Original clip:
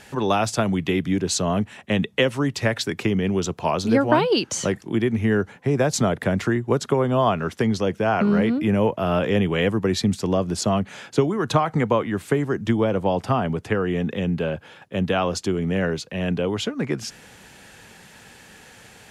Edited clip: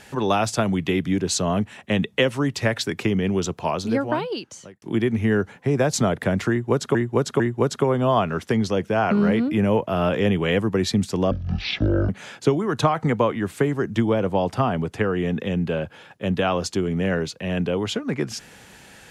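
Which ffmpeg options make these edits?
-filter_complex "[0:a]asplit=6[a][b][c][d][e][f];[a]atrim=end=4.82,asetpts=PTS-STARTPTS,afade=t=out:st=3.44:d=1.38[g];[b]atrim=start=4.82:end=6.952,asetpts=PTS-STARTPTS,afade=t=in:d=0.004:c=hsin[h];[c]atrim=start=6.498:end=6.952[i];[d]atrim=start=6.498:end=10.414[j];[e]atrim=start=10.41:end=10.8,asetpts=PTS-STARTPTS,asetrate=22050,aresample=44100[k];[f]atrim=start=10.796[l];[g][h]concat=n=2:v=0:a=1[m];[m][i]acrossfade=d=0.004:c1=hsin:c2=hsin[n];[n][j]acrossfade=d=0.004:c1=hsin:c2=hsin[o];[o][k]acrossfade=d=0.004:c1=hsin:c2=hsin[p];[p][l]acrossfade=d=0.004:c1=hsin:c2=hsin"

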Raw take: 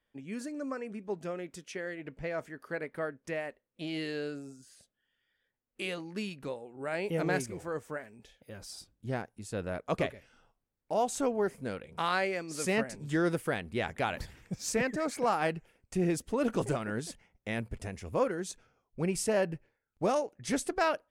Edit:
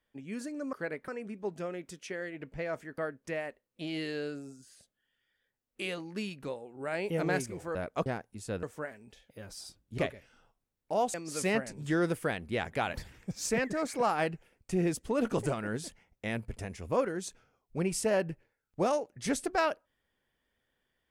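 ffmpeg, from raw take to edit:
-filter_complex "[0:a]asplit=9[a][b][c][d][e][f][g][h][i];[a]atrim=end=0.732[j];[b]atrim=start=2.628:end=2.982[k];[c]atrim=start=0.728:end=2.632[l];[d]atrim=start=2.978:end=7.752[m];[e]atrim=start=9.668:end=9.982[n];[f]atrim=start=9.098:end=9.672[o];[g]atrim=start=7.748:end=9.102[p];[h]atrim=start=9.978:end=11.142[q];[i]atrim=start=12.368[r];[j][k]acrossfade=d=0.004:c1=hsin:c2=hsin[s];[s][l]acrossfade=d=0.004:c1=hsin:c2=hsin[t];[t][m]acrossfade=d=0.004:c1=hsin:c2=hsin[u];[u][n]acrossfade=d=0.004:c1=hsin:c2=hsin[v];[v][o]acrossfade=d=0.004:c1=hsin:c2=hsin[w];[w][p]acrossfade=d=0.004:c1=hsin:c2=hsin[x];[x][q]acrossfade=d=0.004:c1=hsin:c2=hsin[y];[y][r]acrossfade=d=0.004:c1=hsin:c2=hsin"

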